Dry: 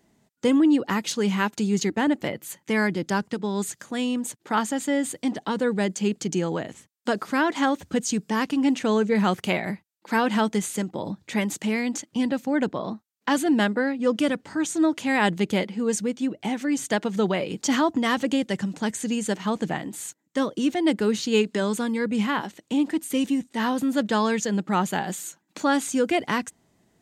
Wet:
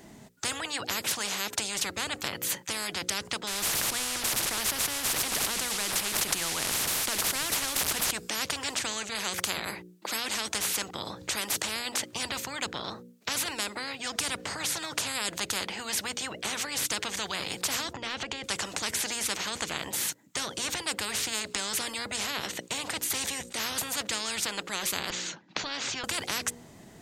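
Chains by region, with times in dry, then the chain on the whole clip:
0:03.47–0:08.11: linear delta modulator 64 kbit/s, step −35.5 dBFS + level that may fall only so fast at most 26 dB per second
0:17.93–0:18.44: low-pass filter 4,700 Hz + downward compressor 3 to 1, threshold −35 dBFS
0:25.10–0:26.04: inverse Chebyshev low-pass filter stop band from 9,300 Hz + downward compressor 1.5 to 1, threshold −35 dBFS
whole clip: mains-hum notches 60/120/180/240/300/360/420/480/540 Hz; every bin compressed towards the loudest bin 10 to 1; level +2 dB

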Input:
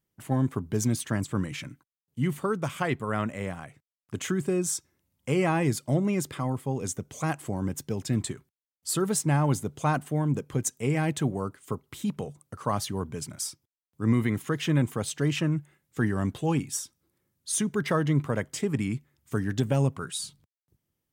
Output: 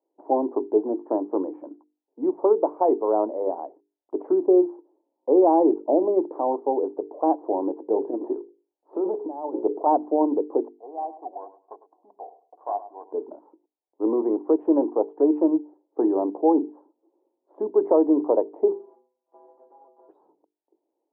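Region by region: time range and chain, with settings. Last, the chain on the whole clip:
0:07.73–0:09.86: mains-hum notches 60/120/180/240/300/360/420/480/540 Hz + compressor whose output falls as the input rises −29 dBFS, ratio −0.5
0:10.68–0:13.12: formant resonators in series a + sample-rate reduction 2,700 Hz, jitter 20% + repeating echo 104 ms, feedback 20%, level −14.5 dB
0:18.71–0:20.08: compressing power law on the bin magnitudes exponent 0.19 + downward compressor, threshold −39 dBFS + stiff-string resonator 120 Hz, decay 0.52 s, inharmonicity 0.008
whole clip: Chebyshev band-pass filter 300–930 Hz, order 4; mains-hum notches 50/100/150/200/250/300/350/400/450 Hz; boost into a limiter +21 dB; level −8 dB

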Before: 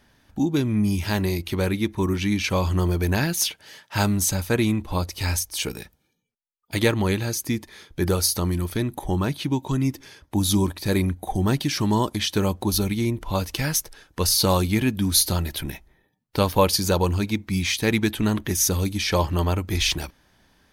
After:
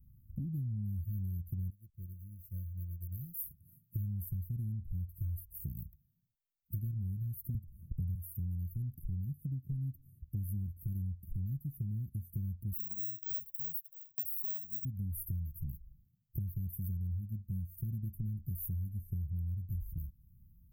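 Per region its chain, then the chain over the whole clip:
0:01.70–0:03.44: low shelf with overshoot 390 Hz −14 dB, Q 3 + slack as between gear wheels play −44 dBFS + expander for the loud parts, over −41 dBFS
0:07.54–0:08.15: low-shelf EQ 180 Hz +10 dB + multiband upward and downward compressor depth 40%
0:12.73–0:14.85: high-pass filter 460 Hz + parametric band 4,100 Hz −7.5 dB 2 octaves + bad sample-rate conversion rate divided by 2×, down none, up zero stuff
whole clip: inverse Chebyshev band-stop filter 600–5,300 Hz, stop band 70 dB; downward compressor 6 to 1, threshold −41 dBFS; level +5 dB

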